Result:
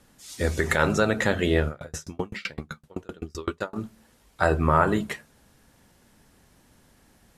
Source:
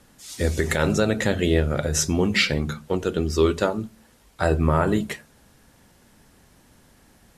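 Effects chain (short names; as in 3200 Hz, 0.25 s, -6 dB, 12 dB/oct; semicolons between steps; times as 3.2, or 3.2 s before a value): dynamic EQ 1200 Hz, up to +8 dB, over -38 dBFS, Q 0.83; 1.68–3.76 dB-ramp tremolo decaying 7.8 Hz, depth 36 dB; gain -3.5 dB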